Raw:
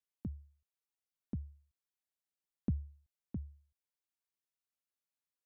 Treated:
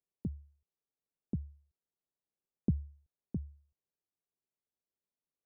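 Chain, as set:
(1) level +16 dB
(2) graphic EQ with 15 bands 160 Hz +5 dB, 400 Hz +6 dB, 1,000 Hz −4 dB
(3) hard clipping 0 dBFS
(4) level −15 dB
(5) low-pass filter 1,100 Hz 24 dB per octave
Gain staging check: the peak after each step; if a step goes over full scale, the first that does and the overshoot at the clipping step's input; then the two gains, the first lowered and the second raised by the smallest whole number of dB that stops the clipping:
−8.0, −4.5, −4.5, −19.5, −19.5 dBFS
no step passes full scale

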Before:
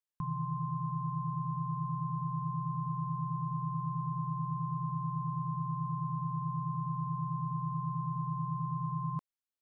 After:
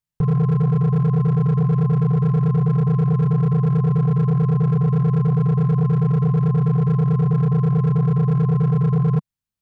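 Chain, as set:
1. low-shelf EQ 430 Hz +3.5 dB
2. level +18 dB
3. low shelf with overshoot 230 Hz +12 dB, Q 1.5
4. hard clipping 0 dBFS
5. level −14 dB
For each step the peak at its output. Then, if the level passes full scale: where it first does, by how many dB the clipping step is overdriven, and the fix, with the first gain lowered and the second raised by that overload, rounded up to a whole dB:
−23.0, −5.0, +7.5, 0.0, −14.0 dBFS
step 3, 7.5 dB
step 2 +10 dB, step 5 −6 dB

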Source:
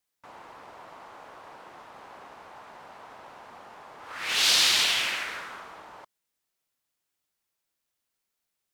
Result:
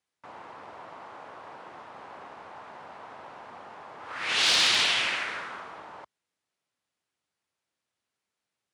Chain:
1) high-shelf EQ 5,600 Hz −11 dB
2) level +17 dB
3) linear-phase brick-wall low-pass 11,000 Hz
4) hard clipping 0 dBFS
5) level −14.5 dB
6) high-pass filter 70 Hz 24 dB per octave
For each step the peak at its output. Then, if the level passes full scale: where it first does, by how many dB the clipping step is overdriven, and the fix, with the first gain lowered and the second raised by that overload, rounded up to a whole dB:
−13.5, +3.5, +3.5, 0.0, −14.5, −13.5 dBFS
step 2, 3.5 dB
step 2 +13 dB, step 5 −10.5 dB

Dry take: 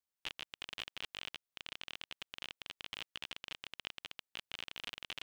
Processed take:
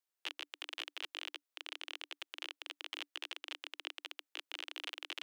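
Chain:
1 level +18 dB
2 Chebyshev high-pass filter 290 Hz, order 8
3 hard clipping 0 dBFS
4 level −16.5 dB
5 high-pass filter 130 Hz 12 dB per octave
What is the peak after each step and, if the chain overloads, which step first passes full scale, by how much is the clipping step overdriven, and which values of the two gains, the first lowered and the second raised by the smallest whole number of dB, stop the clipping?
−2.0, −3.0, −3.0, −19.5, −19.5 dBFS
no step passes full scale

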